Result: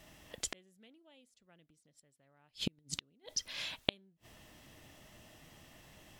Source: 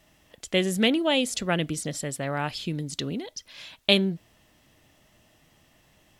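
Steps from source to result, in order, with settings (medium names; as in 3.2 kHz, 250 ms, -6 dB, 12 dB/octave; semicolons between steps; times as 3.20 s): inverted gate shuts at -23 dBFS, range -42 dB; trim +2.5 dB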